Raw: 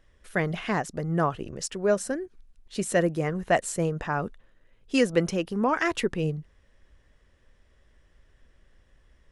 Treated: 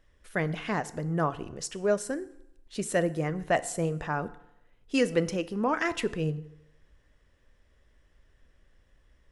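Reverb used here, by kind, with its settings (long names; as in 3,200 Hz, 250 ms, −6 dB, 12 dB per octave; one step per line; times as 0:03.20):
feedback delay network reverb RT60 0.84 s, low-frequency decay 0.9×, high-frequency decay 0.8×, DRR 13.5 dB
level −3 dB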